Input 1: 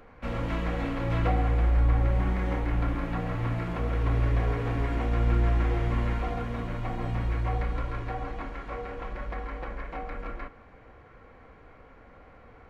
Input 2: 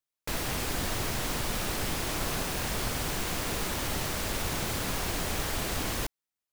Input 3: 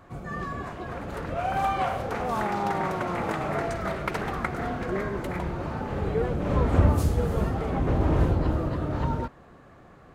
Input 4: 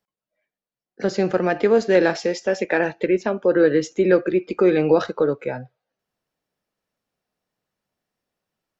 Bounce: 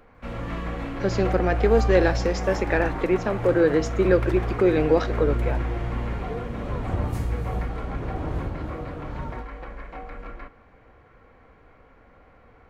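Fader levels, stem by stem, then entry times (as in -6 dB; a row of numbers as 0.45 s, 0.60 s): -1.5 dB, mute, -7.5 dB, -3.0 dB; 0.00 s, mute, 0.15 s, 0.00 s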